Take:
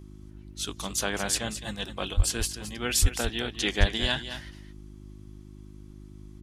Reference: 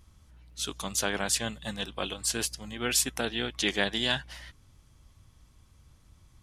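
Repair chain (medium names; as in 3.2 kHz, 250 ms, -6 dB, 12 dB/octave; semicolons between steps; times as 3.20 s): de-hum 51 Hz, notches 7; de-plosive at 2.16/3.01/3.79 s; inverse comb 216 ms -11 dB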